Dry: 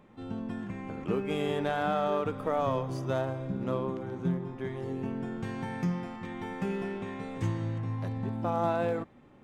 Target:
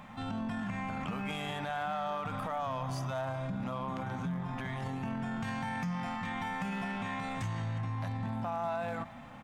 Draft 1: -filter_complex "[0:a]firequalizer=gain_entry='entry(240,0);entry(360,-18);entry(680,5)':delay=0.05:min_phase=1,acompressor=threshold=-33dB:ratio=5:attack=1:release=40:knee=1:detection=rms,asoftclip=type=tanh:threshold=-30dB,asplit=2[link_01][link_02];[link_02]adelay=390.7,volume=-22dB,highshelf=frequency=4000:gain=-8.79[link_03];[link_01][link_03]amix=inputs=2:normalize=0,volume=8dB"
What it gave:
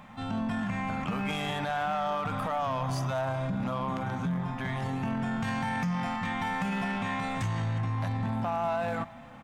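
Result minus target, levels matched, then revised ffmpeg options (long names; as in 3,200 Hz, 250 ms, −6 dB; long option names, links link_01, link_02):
downward compressor: peak gain reduction −6 dB
-filter_complex "[0:a]firequalizer=gain_entry='entry(240,0);entry(360,-18);entry(680,5)':delay=0.05:min_phase=1,acompressor=threshold=-40.5dB:ratio=5:attack=1:release=40:knee=1:detection=rms,asoftclip=type=tanh:threshold=-30dB,asplit=2[link_01][link_02];[link_02]adelay=390.7,volume=-22dB,highshelf=frequency=4000:gain=-8.79[link_03];[link_01][link_03]amix=inputs=2:normalize=0,volume=8dB"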